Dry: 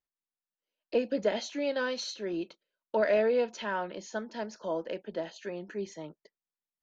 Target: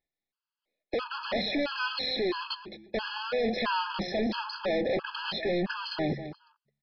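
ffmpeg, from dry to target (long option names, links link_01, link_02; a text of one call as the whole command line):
ffmpeg -i in.wav -filter_complex "[0:a]apsyclip=24dB,agate=range=-29dB:threshold=-24dB:ratio=16:detection=peak,bandreject=frequency=70.82:width_type=h:width=4,bandreject=frequency=141.64:width_type=h:width=4,bandreject=frequency=212.46:width_type=h:width=4,asplit=2[link_01][link_02];[link_02]acontrast=71,volume=1dB[link_03];[link_01][link_03]amix=inputs=2:normalize=0,asoftclip=type=hard:threshold=-10dB,areverse,acompressor=threshold=-22dB:ratio=16,areverse,asoftclip=type=tanh:threshold=-28dB,aecho=1:1:215|430:0.266|0.0479,aresample=11025,aresample=44100,afftfilt=real='re*gt(sin(2*PI*1.5*pts/sr)*(1-2*mod(floor(b*sr/1024/840),2)),0)':imag='im*gt(sin(2*PI*1.5*pts/sr)*(1-2*mod(floor(b*sr/1024/840),2)),0)':win_size=1024:overlap=0.75,volume=2dB" out.wav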